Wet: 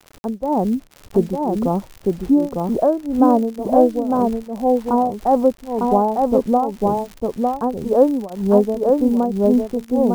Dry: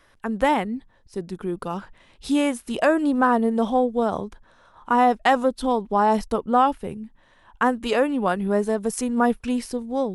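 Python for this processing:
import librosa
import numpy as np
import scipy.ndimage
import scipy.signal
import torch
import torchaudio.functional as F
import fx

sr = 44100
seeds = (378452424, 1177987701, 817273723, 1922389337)

p1 = scipy.signal.sosfilt(scipy.signal.cheby2(4, 60, 2700.0, 'lowpass', fs=sr, output='sos'), x)
p2 = fx.rider(p1, sr, range_db=10, speed_s=0.5)
p3 = p1 + (p2 * 10.0 ** (-2.0 / 20.0))
p4 = fx.quant_dither(p3, sr, seeds[0], bits=8, dither='none')
p5 = fx.tremolo_shape(p4, sr, shape='triangle', hz=1.9, depth_pct=95)
p6 = fx.dmg_crackle(p5, sr, seeds[1], per_s=38.0, level_db=-30.0)
p7 = p6 + fx.echo_single(p6, sr, ms=903, db=-3.0, dry=0)
y = p7 * 10.0 ** (4.0 / 20.0)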